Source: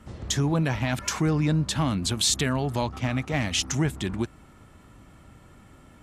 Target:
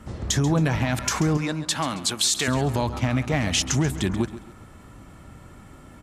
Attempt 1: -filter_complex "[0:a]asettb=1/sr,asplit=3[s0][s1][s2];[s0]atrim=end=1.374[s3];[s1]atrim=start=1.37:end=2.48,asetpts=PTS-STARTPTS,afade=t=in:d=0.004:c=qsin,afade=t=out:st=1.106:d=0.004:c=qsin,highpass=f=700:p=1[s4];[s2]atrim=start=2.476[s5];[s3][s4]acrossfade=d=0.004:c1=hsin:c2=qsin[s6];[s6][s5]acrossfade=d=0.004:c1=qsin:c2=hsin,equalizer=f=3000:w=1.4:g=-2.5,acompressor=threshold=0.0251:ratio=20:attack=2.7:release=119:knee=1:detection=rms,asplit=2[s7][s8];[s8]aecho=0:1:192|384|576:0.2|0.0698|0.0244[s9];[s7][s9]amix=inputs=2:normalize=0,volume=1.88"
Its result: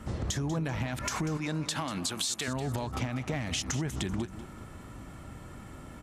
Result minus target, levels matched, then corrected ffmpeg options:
compression: peak gain reduction +10.5 dB; echo 56 ms late
-filter_complex "[0:a]asettb=1/sr,asplit=3[s0][s1][s2];[s0]atrim=end=1.374[s3];[s1]atrim=start=1.37:end=2.48,asetpts=PTS-STARTPTS,afade=t=in:d=0.004:c=qsin,afade=t=out:st=1.106:d=0.004:c=qsin,highpass=f=700:p=1[s4];[s2]atrim=start=2.476[s5];[s3][s4]acrossfade=d=0.004:c1=hsin:c2=qsin[s6];[s6][s5]acrossfade=d=0.004:c1=qsin:c2=hsin,equalizer=f=3000:w=1.4:g=-2.5,acompressor=threshold=0.0891:ratio=20:attack=2.7:release=119:knee=1:detection=rms,asplit=2[s7][s8];[s8]aecho=0:1:136|272|408:0.2|0.0698|0.0244[s9];[s7][s9]amix=inputs=2:normalize=0,volume=1.88"

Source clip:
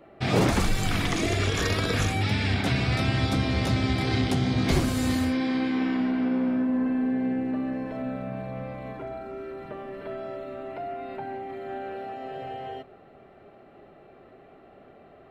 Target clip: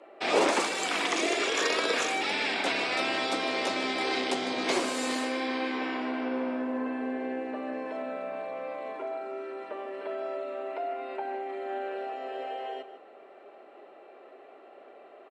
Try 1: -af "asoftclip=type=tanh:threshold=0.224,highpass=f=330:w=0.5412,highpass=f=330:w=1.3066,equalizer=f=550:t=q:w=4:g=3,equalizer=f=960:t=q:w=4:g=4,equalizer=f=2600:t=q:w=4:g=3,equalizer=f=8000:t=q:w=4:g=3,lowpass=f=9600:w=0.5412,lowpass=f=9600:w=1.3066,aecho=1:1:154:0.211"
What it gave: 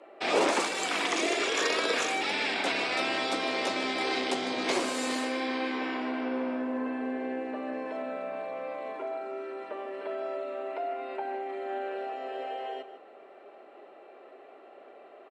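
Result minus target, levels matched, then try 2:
saturation: distortion +18 dB
-af "asoftclip=type=tanh:threshold=0.708,highpass=f=330:w=0.5412,highpass=f=330:w=1.3066,equalizer=f=550:t=q:w=4:g=3,equalizer=f=960:t=q:w=4:g=4,equalizer=f=2600:t=q:w=4:g=3,equalizer=f=8000:t=q:w=4:g=3,lowpass=f=9600:w=0.5412,lowpass=f=9600:w=1.3066,aecho=1:1:154:0.211"

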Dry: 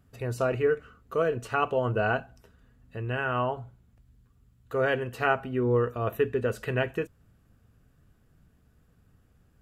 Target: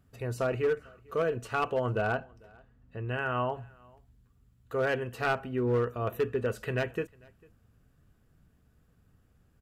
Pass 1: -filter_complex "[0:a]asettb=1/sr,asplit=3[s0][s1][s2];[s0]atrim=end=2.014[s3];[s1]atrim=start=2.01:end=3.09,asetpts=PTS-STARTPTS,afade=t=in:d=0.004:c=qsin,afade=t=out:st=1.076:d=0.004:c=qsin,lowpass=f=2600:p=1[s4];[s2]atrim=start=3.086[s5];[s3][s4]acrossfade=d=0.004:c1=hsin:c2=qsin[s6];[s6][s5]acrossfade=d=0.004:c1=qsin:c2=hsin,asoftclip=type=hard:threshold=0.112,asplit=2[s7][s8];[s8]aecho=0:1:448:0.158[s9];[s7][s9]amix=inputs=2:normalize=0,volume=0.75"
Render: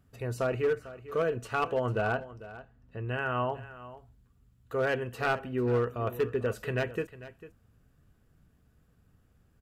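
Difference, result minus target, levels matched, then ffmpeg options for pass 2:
echo-to-direct +11 dB
-filter_complex "[0:a]asettb=1/sr,asplit=3[s0][s1][s2];[s0]atrim=end=2.014[s3];[s1]atrim=start=2.01:end=3.09,asetpts=PTS-STARTPTS,afade=t=in:d=0.004:c=qsin,afade=t=out:st=1.076:d=0.004:c=qsin,lowpass=f=2600:p=1[s4];[s2]atrim=start=3.086[s5];[s3][s4]acrossfade=d=0.004:c1=hsin:c2=qsin[s6];[s6][s5]acrossfade=d=0.004:c1=qsin:c2=hsin,asoftclip=type=hard:threshold=0.112,asplit=2[s7][s8];[s8]aecho=0:1:448:0.0447[s9];[s7][s9]amix=inputs=2:normalize=0,volume=0.75"

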